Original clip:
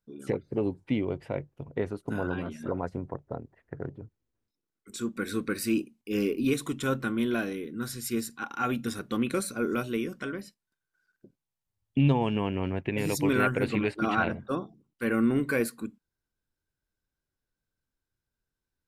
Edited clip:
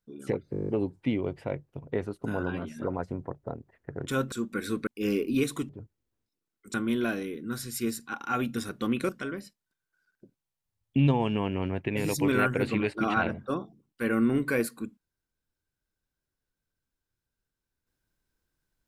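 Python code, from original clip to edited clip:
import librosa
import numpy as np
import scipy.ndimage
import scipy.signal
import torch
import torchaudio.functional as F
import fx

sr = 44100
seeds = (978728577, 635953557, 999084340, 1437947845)

y = fx.edit(x, sr, fx.stutter(start_s=0.52, slice_s=0.02, count=9),
    fx.swap(start_s=3.91, length_s=1.05, other_s=6.79, other_length_s=0.25),
    fx.cut(start_s=5.51, length_s=0.46),
    fx.cut(start_s=9.39, length_s=0.71), tone=tone)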